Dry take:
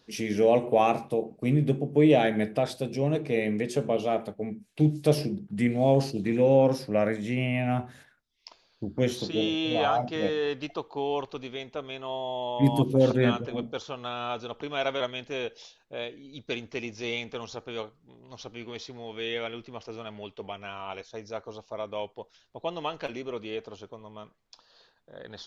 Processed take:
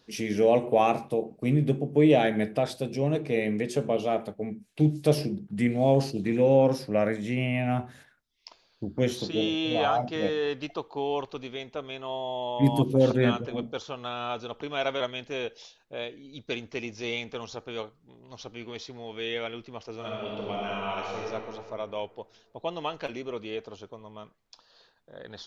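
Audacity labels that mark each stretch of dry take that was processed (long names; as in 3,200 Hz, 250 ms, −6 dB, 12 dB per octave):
19.960000	21.210000	thrown reverb, RT60 2.2 s, DRR −4.5 dB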